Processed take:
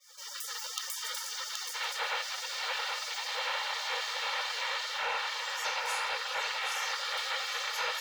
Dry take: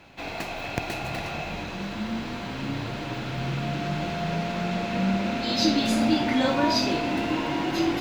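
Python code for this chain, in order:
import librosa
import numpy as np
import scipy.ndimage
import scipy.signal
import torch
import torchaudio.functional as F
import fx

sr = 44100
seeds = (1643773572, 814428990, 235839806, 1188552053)

p1 = fx.fade_in_head(x, sr, length_s=0.51)
p2 = fx.spec_gate(p1, sr, threshold_db=-25, keep='weak')
p3 = scipy.signal.sosfilt(scipy.signal.butter(16, 480.0, 'highpass', fs=sr, output='sos'), p2)
p4 = fx.high_shelf(p3, sr, hz=2400.0, db=-11.5)
p5 = p4 + 0.5 * np.pad(p4, (int(2.2 * sr / 1000.0), 0))[:len(p4)]
p6 = 10.0 ** (-39.0 / 20.0) * np.tanh(p5 / 10.0 ** (-39.0 / 20.0))
p7 = p5 + (p6 * 10.0 ** (-6.0 / 20.0))
p8 = fx.rider(p7, sr, range_db=4, speed_s=0.5)
p9 = p8 + fx.echo_single(p8, sr, ms=775, db=-7.0, dry=0)
p10 = fx.env_flatten(p9, sr, amount_pct=50)
y = p10 * 10.0 ** (6.5 / 20.0)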